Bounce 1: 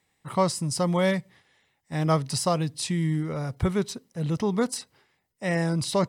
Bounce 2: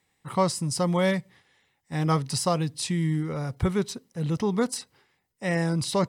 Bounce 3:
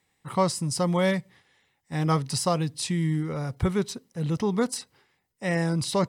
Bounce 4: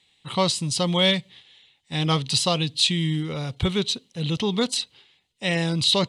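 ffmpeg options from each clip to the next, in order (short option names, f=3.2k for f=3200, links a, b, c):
-af "bandreject=f=630:w=12"
-af anull
-af "lowpass=f=4.5k:t=q:w=1.8,aexciter=amount=1.2:drive=3.8:freq=2.8k,highshelf=f=2.2k:t=q:w=1.5:g=7.5,volume=1dB"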